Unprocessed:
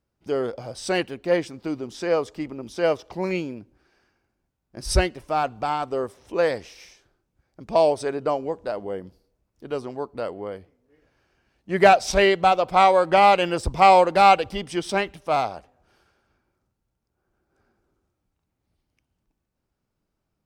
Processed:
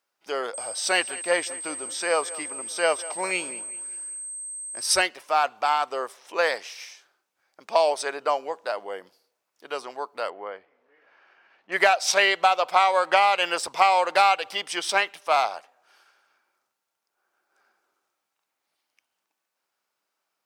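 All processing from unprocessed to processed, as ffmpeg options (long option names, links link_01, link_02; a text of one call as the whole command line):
ffmpeg -i in.wav -filter_complex "[0:a]asettb=1/sr,asplit=3[link_01][link_02][link_03];[link_01]atrim=end=0.544[link_04];[link_02]atrim=start=0.54:end=5.02,asetpts=PTS-STARTPTS,afade=type=in:duration=0.004:curve=qsin,afade=type=out:start_time=4.476:duration=0.004:curve=qsin,lowshelf=frequency=110:gain=10.5,aeval=exprs='val(0)+0.0112*sin(2*PI*8300*n/s)':channel_layout=same,asplit=2[link_05][link_06];[link_06]adelay=195,lowpass=frequency=4400:poles=1,volume=-18dB,asplit=2[link_07][link_08];[link_08]adelay=195,lowpass=frequency=4400:poles=1,volume=0.48,asplit=2[link_09][link_10];[link_10]adelay=195,lowpass=frequency=4400:poles=1,volume=0.48,asplit=2[link_11][link_12];[link_12]adelay=195,lowpass=frequency=4400:poles=1,volume=0.48[link_13];[link_05][link_07][link_09][link_11][link_13]amix=inputs=5:normalize=0,atrim=end_sample=197568[link_14];[link_03]atrim=start=5.016[link_15];[link_04][link_14]acrossfade=duration=0.004:curve1=hsin:curve2=qsin[link_16];[link_16][link_15]acrossfade=duration=0.004:curve1=qsin:curve2=hsin,asettb=1/sr,asplit=3[link_17][link_18][link_19];[link_17]atrim=end=10.304[link_20];[link_18]atrim=start=10.3:end=11.72,asetpts=PTS-STARTPTS,afade=type=in:duration=0.004:curve=qsin,afade=type=out:start_time=1.416:duration=0.004:curve=qsin,lowpass=2300,acompressor=mode=upward:threshold=-50dB:ratio=2.5:attack=3.2:release=140:knee=2.83:detection=peak[link_21];[link_19]atrim=start=11.716[link_22];[link_20][link_21]acrossfade=duration=0.004:curve1=hsin:curve2=qsin[link_23];[link_23][link_22]acrossfade=duration=0.004:curve1=qsin:curve2=hsin,highpass=890,acompressor=threshold=-21dB:ratio=10,volume=6.5dB" out.wav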